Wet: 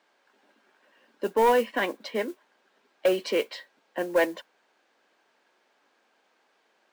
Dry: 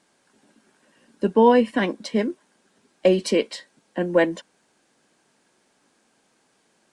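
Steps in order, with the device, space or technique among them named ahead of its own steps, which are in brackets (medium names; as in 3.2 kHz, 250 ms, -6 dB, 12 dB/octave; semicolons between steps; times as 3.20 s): carbon microphone (band-pass 470–3600 Hz; saturation -14 dBFS, distortion -15 dB; modulation noise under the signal 23 dB)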